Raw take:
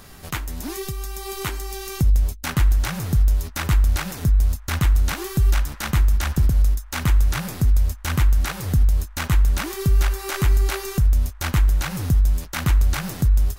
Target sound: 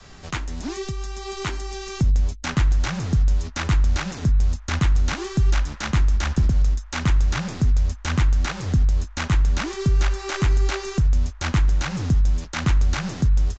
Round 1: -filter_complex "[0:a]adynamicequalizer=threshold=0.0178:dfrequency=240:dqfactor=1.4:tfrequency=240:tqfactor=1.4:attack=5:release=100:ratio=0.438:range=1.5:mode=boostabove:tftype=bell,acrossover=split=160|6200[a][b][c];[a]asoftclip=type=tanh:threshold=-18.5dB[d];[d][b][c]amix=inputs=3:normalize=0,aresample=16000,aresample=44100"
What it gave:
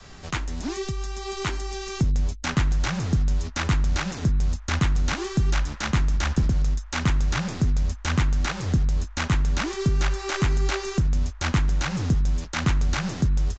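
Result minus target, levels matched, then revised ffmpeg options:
soft clip: distortion +11 dB
-filter_complex "[0:a]adynamicequalizer=threshold=0.0178:dfrequency=240:dqfactor=1.4:tfrequency=240:tqfactor=1.4:attack=5:release=100:ratio=0.438:range=1.5:mode=boostabove:tftype=bell,acrossover=split=160|6200[a][b][c];[a]asoftclip=type=tanh:threshold=-10.5dB[d];[d][b][c]amix=inputs=3:normalize=0,aresample=16000,aresample=44100"

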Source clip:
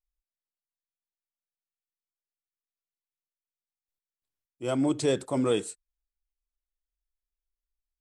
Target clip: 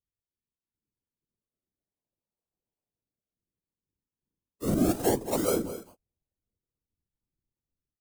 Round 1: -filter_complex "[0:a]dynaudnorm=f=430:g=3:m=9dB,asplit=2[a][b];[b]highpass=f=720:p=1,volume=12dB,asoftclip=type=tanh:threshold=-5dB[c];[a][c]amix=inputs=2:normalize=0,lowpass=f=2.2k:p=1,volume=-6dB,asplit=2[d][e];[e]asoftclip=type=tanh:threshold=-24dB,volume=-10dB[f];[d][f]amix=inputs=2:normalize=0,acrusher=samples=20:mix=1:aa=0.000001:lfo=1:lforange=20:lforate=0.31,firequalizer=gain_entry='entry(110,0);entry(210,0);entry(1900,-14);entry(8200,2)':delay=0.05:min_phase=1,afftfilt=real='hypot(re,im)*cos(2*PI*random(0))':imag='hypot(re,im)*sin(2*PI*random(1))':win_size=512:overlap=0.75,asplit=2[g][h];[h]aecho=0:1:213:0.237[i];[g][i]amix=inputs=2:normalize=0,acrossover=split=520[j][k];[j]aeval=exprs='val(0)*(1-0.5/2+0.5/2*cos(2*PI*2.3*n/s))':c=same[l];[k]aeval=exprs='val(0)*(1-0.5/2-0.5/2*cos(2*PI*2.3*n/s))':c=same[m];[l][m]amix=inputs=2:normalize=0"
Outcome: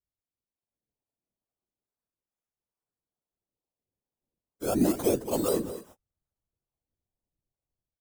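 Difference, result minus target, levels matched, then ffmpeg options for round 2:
decimation with a swept rate: distortion -10 dB
-filter_complex "[0:a]dynaudnorm=f=430:g=3:m=9dB,asplit=2[a][b];[b]highpass=f=720:p=1,volume=12dB,asoftclip=type=tanh:threshold=-5dB[c];[a][c]amix=inputs=2:normalize=0,lowpass=f=2.2k:p=1,volume=-6dB,asplit=2[d][e];[e]asoftclip=type=tanh:threshold=-24dB,volume=-10dB[f];[d][f]amix=inputs=2:normalize=0,acrusher=samples=47:mix=1:aa=0.000001:lfo=1:lforange=47:lforate=0.31,firequalizer=gain_entry='entry(110,0);entry(210,0);entry(1900,-14);entry(8200,2)':delay=0.05:min_phase=1,afftfilt=real='hypot(re,im)*cos(2*PI*random(0))':imag='hypot(re,im)*sin(2*PI*random(1))':win_size=512:overlap=0.75,asplit=2[g][h];[h]aecho=0:1:213:0.237[i];[g][i]amix=inputs=2:normalize=0,acrossover=split=520[j][k];[j]aeval=exprs='val(0)*(1-0.5/2+0.5/2*cos(2*PI*2.3*n/s))':c=same[l];[k]aeval=exprs='val(0)*(1-0.5/2-0.5/2*cos(2*PI*2.3*n/s))':c=same[m];[l][m]amix=inputs=2:normalize=0"

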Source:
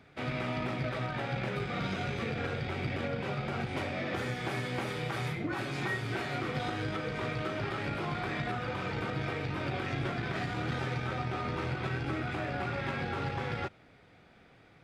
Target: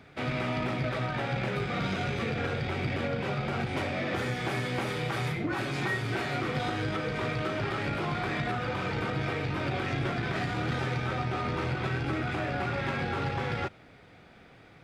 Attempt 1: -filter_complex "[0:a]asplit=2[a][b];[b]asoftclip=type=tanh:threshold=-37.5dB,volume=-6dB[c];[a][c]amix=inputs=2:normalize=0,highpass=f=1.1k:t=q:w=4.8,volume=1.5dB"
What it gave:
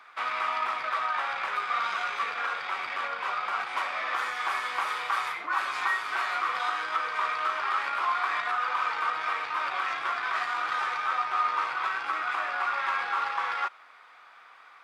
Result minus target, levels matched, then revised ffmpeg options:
1000 Hz band +5.5 dB
-filter_complex "[0:a]asplit=2[a][b];[b]asoftclip=type=tanh:threshold=-37.5dB,volume=-6dB[c];[a][c]amix=inputs=2:normalize=0,volume=1.5dB"

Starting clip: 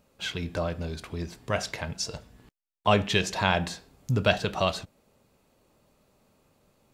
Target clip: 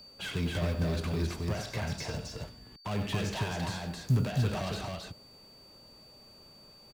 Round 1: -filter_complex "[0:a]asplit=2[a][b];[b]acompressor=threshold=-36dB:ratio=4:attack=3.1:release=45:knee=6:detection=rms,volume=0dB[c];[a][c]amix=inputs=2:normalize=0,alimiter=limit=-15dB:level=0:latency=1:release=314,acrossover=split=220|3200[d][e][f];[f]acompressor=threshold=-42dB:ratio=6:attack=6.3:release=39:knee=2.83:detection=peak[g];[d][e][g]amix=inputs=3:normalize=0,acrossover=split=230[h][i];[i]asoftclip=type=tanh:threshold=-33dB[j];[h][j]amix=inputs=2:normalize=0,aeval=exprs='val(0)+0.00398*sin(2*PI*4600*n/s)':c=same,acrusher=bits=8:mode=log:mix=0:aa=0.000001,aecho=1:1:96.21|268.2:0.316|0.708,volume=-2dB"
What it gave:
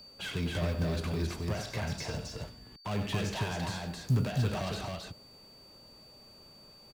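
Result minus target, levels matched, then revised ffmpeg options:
compressor: peak gain reduction +5 dB
-filter_complex "[0:a]asplit=2[a][b];[b]acompressor=threshold=-29dB:ratio=4:attack=3.1:release=45:knee=6:detection=rms,volume=0dB[c];[a][c]amix=inputs=2:normalize=0,alimiter=limit=-15dB:level=0:latency=1:release=314,acrossover=split=220|3200[d][e][f];[f]acompressor=threshold=-42dB:ratio=6:attack=6.3:release=39:knee=2.83:detection=peak[g];[d][e][g]amix=inputs=3:normalize=0,acrossover=split=230[h][i];[i]asoftclip=type=tanh:threshold=-33dB[j];[h][j]amix=inputs=2:normalize=0,aeval=exprs='val(0)+0.00398*sin(2*PI*4600*n/s)':c=same,acrusher=bits=8:mode=log:mix=0:aa=0.000001,aecho=1:1:96.21|268.2:0.316|0.708,volume=-2dB"

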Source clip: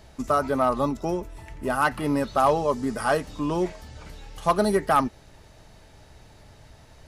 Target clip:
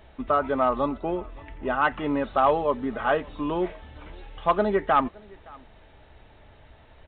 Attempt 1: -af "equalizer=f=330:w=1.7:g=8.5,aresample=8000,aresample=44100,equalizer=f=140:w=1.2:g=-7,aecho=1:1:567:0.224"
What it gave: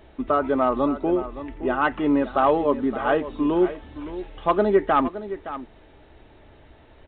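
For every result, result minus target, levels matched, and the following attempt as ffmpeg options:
echo-to-direct +12 dB; 250 Hz band +4.0 dB
-af "equalizer=f=330:w=1.7:g=8.5,aresample=8000,aresample=44100,equalizer=f=140:w=1.2:g=-7,aecho=1:1:567:0.0562"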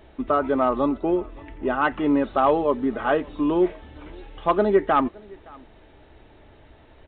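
250 Hz band +3.5 dB
-af "aresample=8000,aresample=44100,equalizer=f=140:w=1.2:g=-7,aecho=1:1:567:0.0562"

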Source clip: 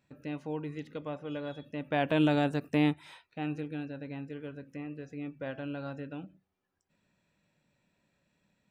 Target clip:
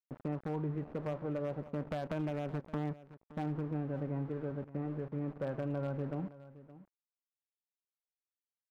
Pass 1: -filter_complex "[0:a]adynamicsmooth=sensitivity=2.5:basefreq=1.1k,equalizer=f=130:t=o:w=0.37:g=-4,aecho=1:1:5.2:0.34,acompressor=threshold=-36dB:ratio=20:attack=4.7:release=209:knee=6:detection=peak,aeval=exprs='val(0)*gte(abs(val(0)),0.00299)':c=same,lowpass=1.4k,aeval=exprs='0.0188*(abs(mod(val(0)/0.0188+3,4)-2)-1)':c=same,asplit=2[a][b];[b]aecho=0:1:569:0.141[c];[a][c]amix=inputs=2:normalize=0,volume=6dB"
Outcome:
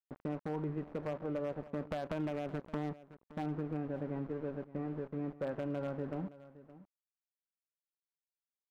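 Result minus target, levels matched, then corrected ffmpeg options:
125 Hz band -3.0 dB
-filter_complex "[0:a]adynamicsmooth=sensitivity=2.5:basefreq=1.1k,equalizer=f=130:t=o:w=0.37:g=4.5,aecho=1:1:5.2:0.34,acompressor=threshold=-36dB:ratio=20:attack=4.7:release=209:knee=6:detection=peak,aeval=exprs='val(0)*gte(abs(val(0)),0.00299)':c=same,lowpass=1.4k,aeval=exprs='0.0188*(abs(mod(val(0)/0.0188+3,4)-2)-1)':c=same,asplit=2[a][b];[b]aecho=0:1:569:0.141[c];[a][c]amix=inputs=2:normalize=0,volume=6dB"

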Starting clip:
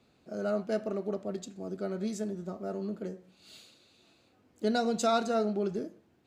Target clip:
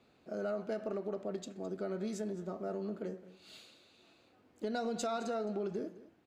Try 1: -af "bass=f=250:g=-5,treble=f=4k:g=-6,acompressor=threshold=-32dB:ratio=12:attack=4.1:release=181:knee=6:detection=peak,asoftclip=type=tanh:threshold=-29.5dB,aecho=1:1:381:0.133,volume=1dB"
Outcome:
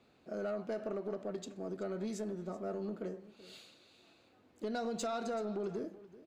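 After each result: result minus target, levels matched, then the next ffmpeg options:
echo 0.168 s late; soft clip: distortion +18 dB
-af "bass=f=250:g=-5,treble=f=4k:g=-6,acompressor=threshold=-32dB:ratio=12:attack=4.1:release=181:knee=6:detection=peak,asoftclip=type=tanh:threshold=-29.5dB,aecho=1:1:213:0.133,volume=1dB"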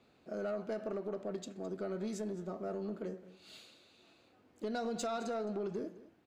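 soft clip: distortion +18 dB
-af "bass=f=250:g=-5,treble=f=4k:g=-6,acompressor=threshold=-32dB:ratio=12:attack=4.1:release=181:knee=6:detection=peak,asoftclip=type=tanh:threshold=-19.5dB,aecho=1:1:213:0.133,volume=1dB"

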